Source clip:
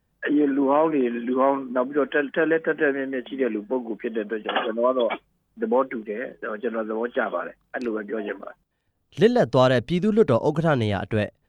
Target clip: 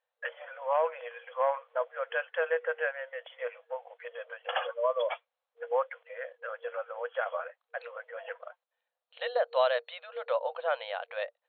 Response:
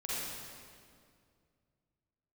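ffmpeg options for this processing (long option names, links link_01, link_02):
-af "afftfilt=real='re*between(b*sr/4096,470,4300)':imag='im*between(b*sr/4096,470,4300)':win_size=4096:overlap=0.75,volume=-7dB"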